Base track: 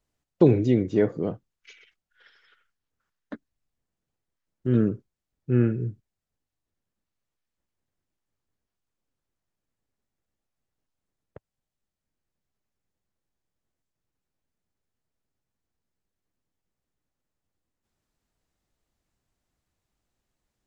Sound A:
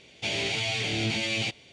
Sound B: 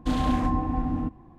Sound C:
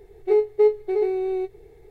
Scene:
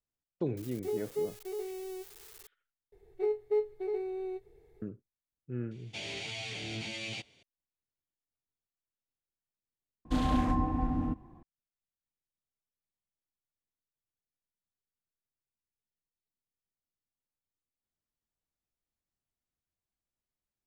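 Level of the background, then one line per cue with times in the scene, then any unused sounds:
base track −16 dB
0:00.57: mix in C −16 dB + spike at every zero crossing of −20.5 dBFS
0:02.92: overwrite with C −12 dB
0:05.71: mix in A −11 dB + high-shelf EQ 7,800 Hz +2.5 dB
0:10.05: overwrite with B −4 dB

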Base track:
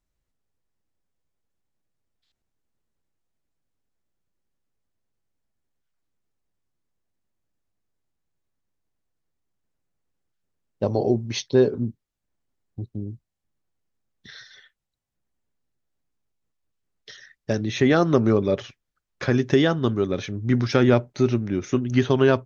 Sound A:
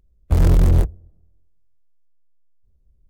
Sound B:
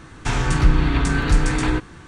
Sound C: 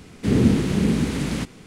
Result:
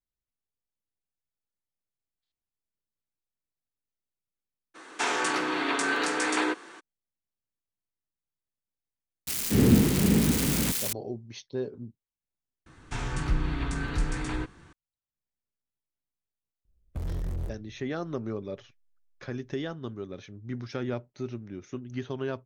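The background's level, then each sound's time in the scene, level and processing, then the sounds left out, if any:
base track −15 dB
0:04.74: mix in B −1 dB, fades 0.02 s + high-pass filter 340 Hz 24 dB per octave
0:09.27: mix in C −2.5 dB + spike at every zero crossing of −16.5 dBFS
0:12.66: overwrite with B −11.5 dB
0:16.65: mix in A −9.5 dB + downward compressor 4 to 1, threshold −21 dBFS

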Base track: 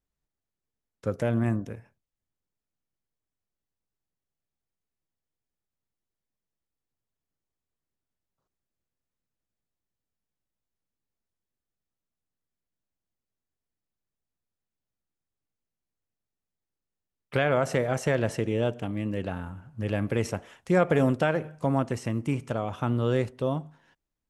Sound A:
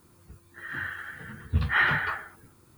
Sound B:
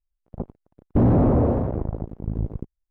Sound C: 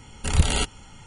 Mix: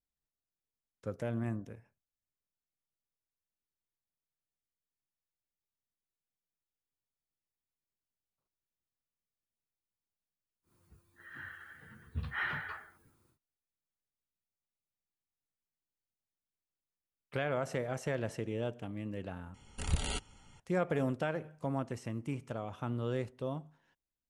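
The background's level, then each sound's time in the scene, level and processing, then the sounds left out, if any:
base track −10 dB
0:10.62: mix in A −13 dB, fades 0.10 s
0:19.54: overwrite with C −13 dB
not used: B

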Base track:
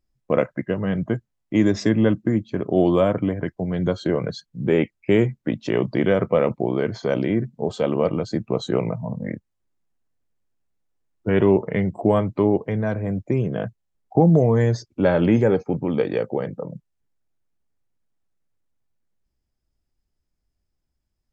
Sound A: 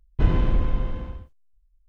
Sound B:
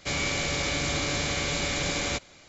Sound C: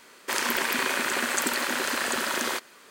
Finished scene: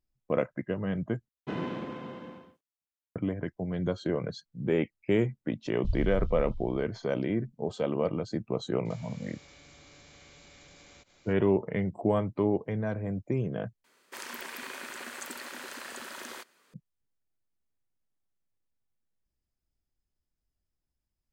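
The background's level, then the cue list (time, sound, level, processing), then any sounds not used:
base track −8 dB
0:01.28: overwrite with A −4.5 dB + high-pass filter 180 Hz 24 dB per octave
0:05.65: mix in A −10.5 dB + inverse Chebyshev band-stop filter 260–1,700 Hz, stop band 50 dB
0:08.85: mix in B −10 dB + downward compressor 12 to 1, threshold −41 dBFS
0:13.84: overwrite with C −14.5 dB

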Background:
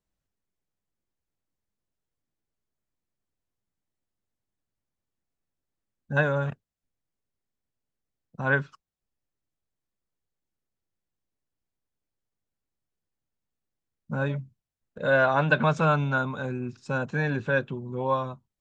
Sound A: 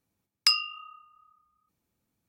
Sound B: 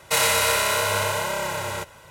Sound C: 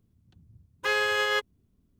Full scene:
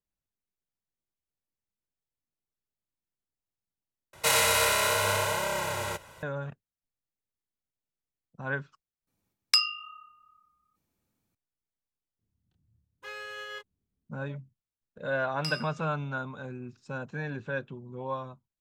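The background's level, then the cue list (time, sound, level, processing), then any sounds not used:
background −8.5 dB
0:04.13: overwrite with B −3.5 dB
0:09.07: mix in A −0.5 dB
0:12.19: mix in C −17 dB + double-tracking delay 27 ms −4 dB
0:14.98: mix in A −15.5 dB + dense smooth reverb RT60 1.1 s, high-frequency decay 0.45×, DRR −1 dB

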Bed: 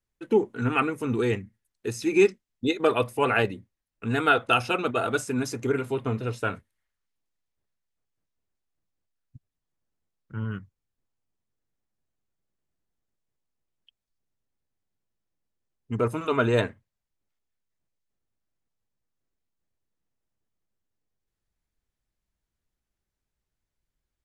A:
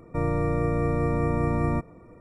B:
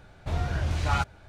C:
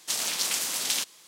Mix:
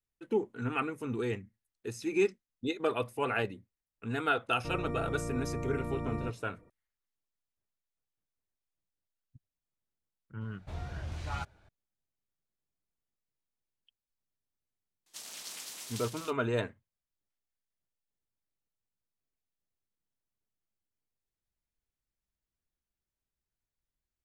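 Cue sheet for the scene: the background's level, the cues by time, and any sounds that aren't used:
bed −8.5 dB
0:04.50: mix in A −12 dB
0:10.41: mix in B −11.5 dB
0:15.06: mix in C −17 dB + single-tap delay 208 ms −4 dB

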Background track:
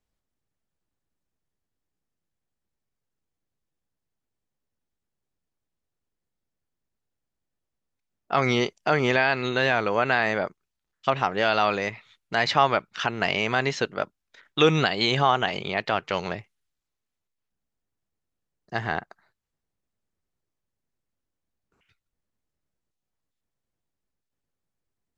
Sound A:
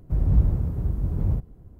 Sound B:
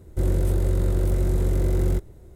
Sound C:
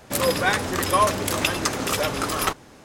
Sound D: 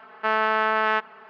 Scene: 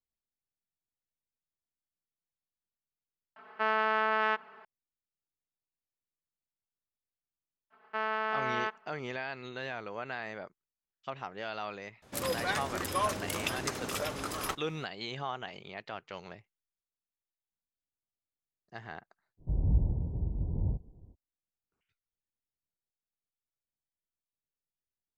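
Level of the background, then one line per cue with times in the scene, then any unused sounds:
background track −16.5 dB
0:03.36: mix in D −6.5 dB
0:07.70: mix in D −10.5 dB + downward expander −43 dBFS
0:12.02: mix in C −11.5 dB
0:19.37: mix in A −7 dB, fades 0.05 s + elliptic low-pass filter 950 Hz
not used: B

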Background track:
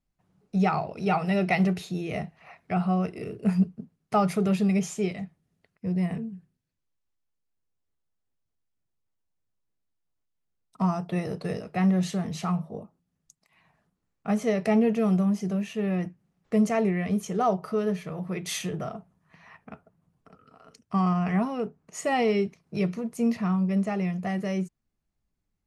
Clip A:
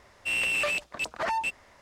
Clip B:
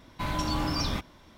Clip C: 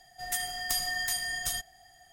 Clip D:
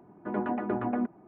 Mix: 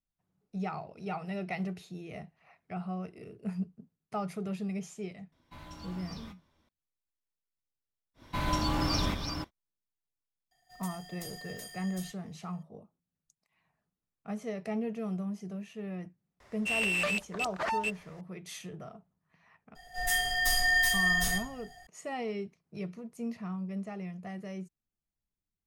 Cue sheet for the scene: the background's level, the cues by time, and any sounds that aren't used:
background track −12 dB
0:05.32: mix in B −13 dB + tuned comb filter 82 Hz, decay 0.18 s, mix 70%
0:08.14: mix in B −1 dB, fades 0.10 s + delay that plays each chunk backwards 326 ms, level −6 dB
0:10.51: mix in C −15 dB + one scale factor per block 5 bits
0:16.40: mix in A −3 dB
0:19.75: mix in C −8 dB + rectangular room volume 37 cubic metres, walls mixed, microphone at 1.9 metres
not used: D

